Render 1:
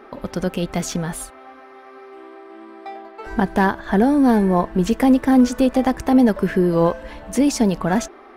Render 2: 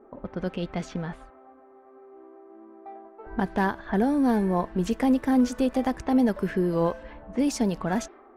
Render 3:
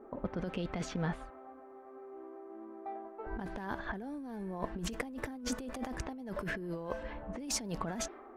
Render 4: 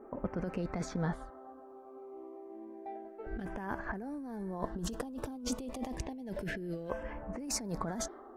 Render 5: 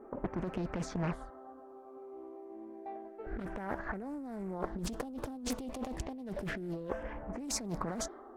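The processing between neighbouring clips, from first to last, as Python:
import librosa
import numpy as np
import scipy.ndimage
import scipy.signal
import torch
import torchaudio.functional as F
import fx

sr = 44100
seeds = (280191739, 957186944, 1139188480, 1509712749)

y1 = fx.env_lowpass(x, sr, base_hz=650.0, full_db=-14.5)
y1 = y1 * librosa.db_to_amplitude(-7.5)
y2 = fx.over_compress(y1, sr, threshold_db=-32.0, ratio=-1.0)
y2 = y2 * librosa.db_to_amplitude(-6.5)
y3 = fx.filter_lfo_notch(y2, sr, shape='saw_down', hz=0.29, low_hz=950.0, high_hz=4300.0, q=1.1)
y3 = y3 * librosa.db_to_amplitude(1.0)
y4 = fx.doppler_dist(y3, sr, depth_ms=0.74)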